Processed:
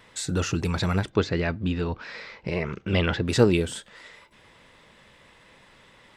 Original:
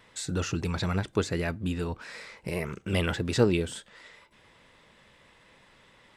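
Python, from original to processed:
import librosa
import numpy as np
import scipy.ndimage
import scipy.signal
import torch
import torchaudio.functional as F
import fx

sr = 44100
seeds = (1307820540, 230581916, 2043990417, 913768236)

y = fx.lowpass(x, sr, hz=5200.0, slope=24, at=(1.09, 3.27), fade=0.02)
y = y * 10.0 ** (4.0 / 20.0)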